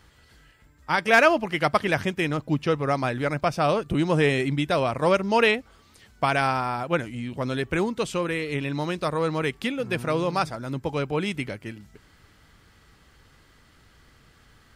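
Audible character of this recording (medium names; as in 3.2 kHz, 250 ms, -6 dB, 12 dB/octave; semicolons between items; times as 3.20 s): noise floor -57 dBFS; spectral tilt -4.0 dB/octave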